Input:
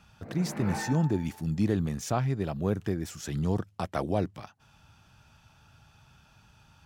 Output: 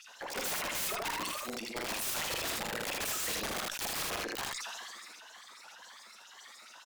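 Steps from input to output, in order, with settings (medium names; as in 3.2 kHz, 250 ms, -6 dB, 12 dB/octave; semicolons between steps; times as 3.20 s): sawtooth pitch modulation +8.5 st, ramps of 513 ms; high-pass 200 Hz 24 dB/octave; compressor with a negative ratio -32 dBFS, ratio -0.5; LFO high-pass sine 7.2 Hz 520–6500 Hz; integer overflow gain 35 dB; Chebyshev shaper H 4 -26 dB, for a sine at -35 dBFS; on a send: early reflections 45 ms -12.5 dB, 79 ms -5 dB; on the sum: decay stretcher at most 20 dB/s; trim +5 dB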